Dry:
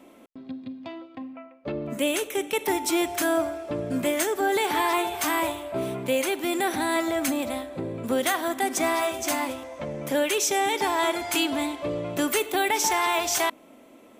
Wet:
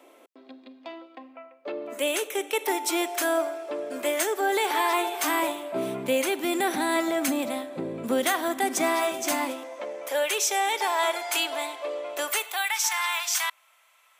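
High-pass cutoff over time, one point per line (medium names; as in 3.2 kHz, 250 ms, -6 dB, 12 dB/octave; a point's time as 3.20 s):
high-pass 24 dB/octave
4.93 s 360 Hz
5.91 s 150 Hz
9.30 s 150 Hz
10.04 s 480 Hz
12.20 s 480 Hz
12.76 s 1.1 kHz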